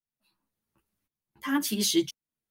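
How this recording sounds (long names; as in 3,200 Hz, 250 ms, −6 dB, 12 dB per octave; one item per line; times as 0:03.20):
tremolo saw up 0.94 Hz, depth 90%
a shimmering, thickened sound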